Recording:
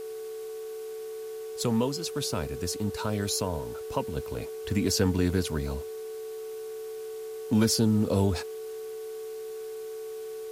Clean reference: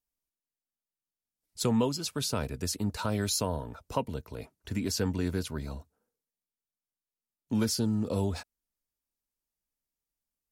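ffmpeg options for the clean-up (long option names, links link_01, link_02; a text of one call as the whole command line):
ffmpeg -i in.wav -af "bandreject=frequency=374.1:width_type=h:width=4,bandreject=frequency=748.2:width_type=h:width=4,bandreject=frequency=1122.3:width_type=h:width=4,bandreject=frequency=1496.4:width_type=h:width=4,bandreject=frequency=440:width=30,afwtdn=0.0025,asetnsamples=nb_out_samples=441:pad=0,asendcmd='4.16 volume volume -5dB',volume=0dB" out.wav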